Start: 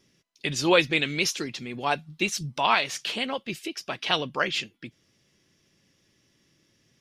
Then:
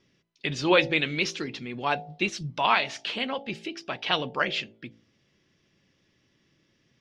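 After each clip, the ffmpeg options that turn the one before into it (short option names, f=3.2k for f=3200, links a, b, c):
-af "lowpass=4.1k,bandreject=f=55.61:t=h:w=4,bandreject=f=111.22:t=h:w=4,bandreject=f=166.83:t=h:w=4,bandreject=f=222.44:t=h:w=4,bandreject=f=278.05:t=h:w=4,bandreject=f=333.66:t=h:w=4,bandreject=f=389.27:t=h:w=4,bandreject=f=444.88:t=h:w=4,bandreject=f=500.49:t=h:w=4,bandreject=f=556.1:t=h:w=4,bandreject=f=611.71:t=h:w=4,bandreject=f=667.32:t=h:w=4,bandreject=f=722.93:t=h:w=4,bandreject=f=778.54:t=h:w=4,bandreject=f=834.15:t=h:w=4,bandreject=f=889.76:t=h:w=4"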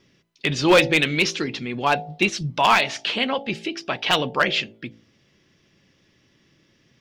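-af "asoftclip=type=hard:threshold=-16dB,volume=7dB"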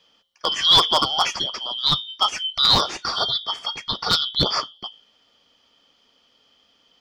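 -af "afftfilt=real='real(if(lt(b,272),68*(eq(floor(b/68),0)*1+eq(floor(b/68),1)*3+eq(floor(b/68),2)*0+eq(floor(b/68),3)*2)+mod(b,68),b),0)':imag='imag(if(lt(b,272),68*(eq(floor(b/68),0)*1+eq(floor(b/68),1)*3+eq(floor(b/68),2)*0+eq(floor(b/68),3)*2)+mod(b,68),b),0)':win_size=2048:overlap=0.75"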